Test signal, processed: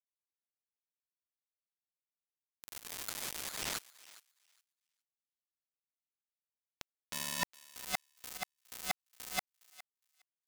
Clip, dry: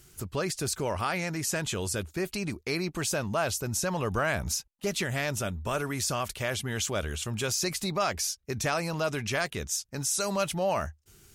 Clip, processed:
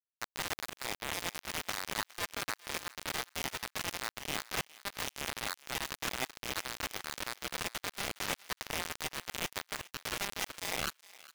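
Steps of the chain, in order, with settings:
low-pass filter 8,100 Hz 24 dB per octave
tilt shelving filter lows −3 dB, about 1,100 Hz
reversed playback
downward compressor 16 to 1, threshold −40 dBFS
reversed playback
sample-rate reduction 3,200 Hz, jitter 0%
ring modulation 1,400 Hz
log-companded quantiser 2 bits
fake sidechain pumping 86 BPM, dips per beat 1, −14 dB, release 175 ms
on a send: feedback echo with a high-pass in the loop 412 ms, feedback 17%, high-pass 1,100 Hz, level −18 dB
on the sum: level +2 dB

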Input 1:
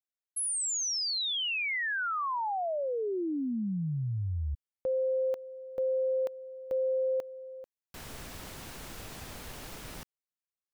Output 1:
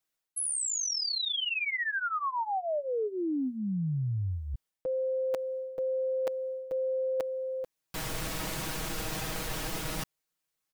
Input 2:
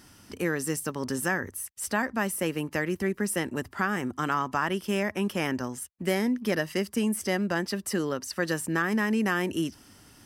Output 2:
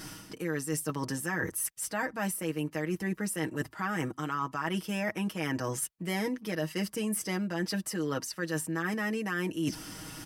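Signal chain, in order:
comb filter 6.3 ms, depth 82%
reversed playback
downward compressor 8 to 1, threshold −38 dBFS
reversed playback
level +8.5 dB

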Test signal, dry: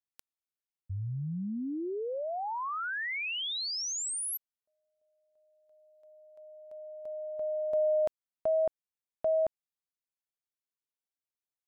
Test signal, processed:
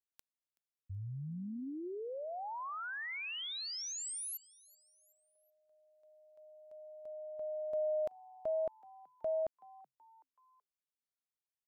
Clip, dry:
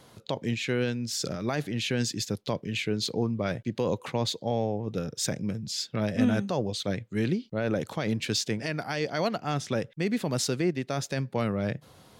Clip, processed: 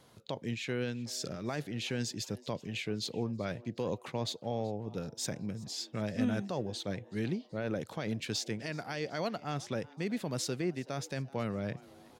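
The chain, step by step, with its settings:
echo with shifted repeats 377 ms, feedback 47%, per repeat +130 Hz, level −22.5 dB
level −7 dB

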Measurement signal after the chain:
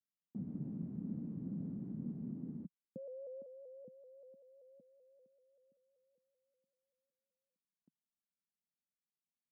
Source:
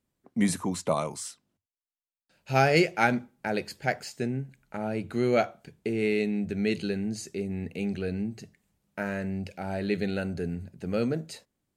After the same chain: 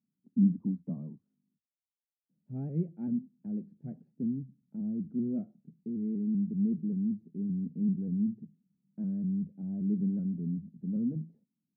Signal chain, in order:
speech leveller within 4 dB 2 s
flat-topped band-pass 200 Hz, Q 2
pitch modulation by a square or saw wave saw up 5.2 Hz, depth 100 cents

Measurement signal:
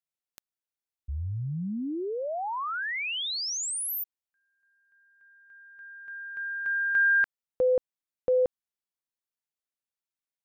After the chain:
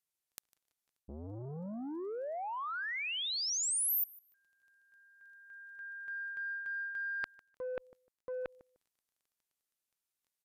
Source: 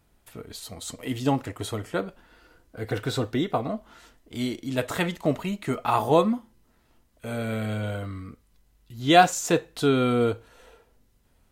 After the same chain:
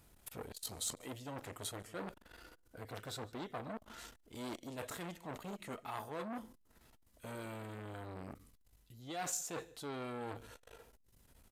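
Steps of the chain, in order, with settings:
reversed playback
downward compressor 12 to 1, threshold −37 dBFS
reversed playback
high-shelf EQ 5,700 Hz +8 dB
on a send: repeating echo 151 ms, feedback 18%, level −23 dB
on the sum: surface crackle 12 per second −60 dBFS
downsampling to 32,000 Hz
saturating transformer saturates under 1,900 Hz

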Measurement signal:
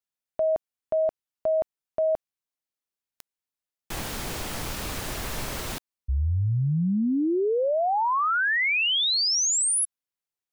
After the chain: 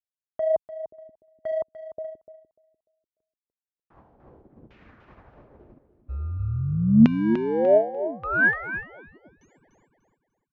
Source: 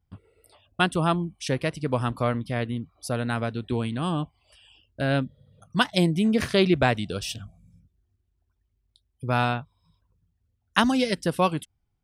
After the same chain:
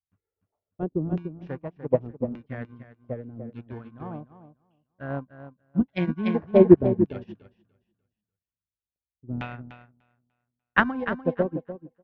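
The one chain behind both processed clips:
high-pass filter 40 Hz 12 dB per octave
high-shelf EQ 5,100 Hz −7.5 dB
in parallel at −9 dB: decimation without filtering 34×
on the sum: auto-filter low-pass saw down 0.85 Hz 230–2,700 Hz
on a send: repeating echo 296 ms, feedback 32%, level −5 dB
on the sum: downsampling to 16,000 Hz
expander for the loud parts 2.5 to 1, over −33 dBFS
level +4 dB

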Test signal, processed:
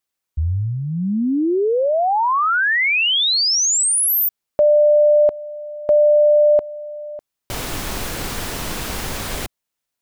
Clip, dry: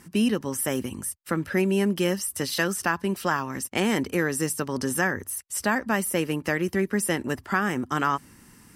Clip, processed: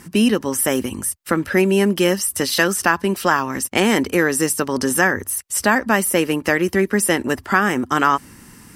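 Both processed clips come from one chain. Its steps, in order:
dynamic equaliser 140 Hz, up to −7 dB, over −42 dBFS, Q 1.7
level +8.5 dB

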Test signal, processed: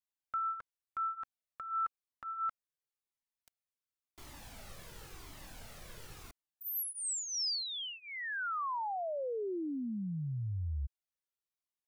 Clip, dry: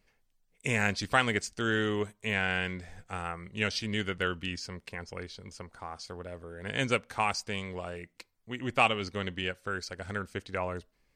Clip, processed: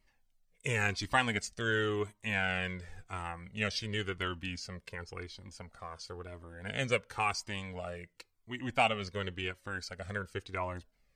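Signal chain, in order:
flanger whose copies keep moving one way falling 0.94 Hz
level +1.5 dB

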